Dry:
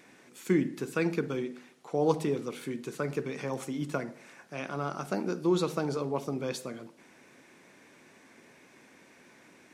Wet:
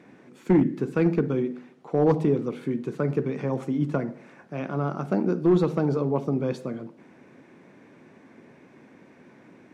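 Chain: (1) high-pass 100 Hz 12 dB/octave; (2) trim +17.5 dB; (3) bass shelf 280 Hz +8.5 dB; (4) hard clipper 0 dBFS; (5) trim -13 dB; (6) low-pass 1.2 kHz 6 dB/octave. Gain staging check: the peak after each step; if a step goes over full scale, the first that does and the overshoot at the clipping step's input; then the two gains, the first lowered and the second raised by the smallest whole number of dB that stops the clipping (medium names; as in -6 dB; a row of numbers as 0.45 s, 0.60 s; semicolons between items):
-14.0 dBFS, +3.5 dBFS, +6.5 dBFS, 0.0 dBFS, -13.0 dBFS, -13.0 dBFS; step 2, 6.5 dB; step 2 +10.5 dB, step 5 -6 dB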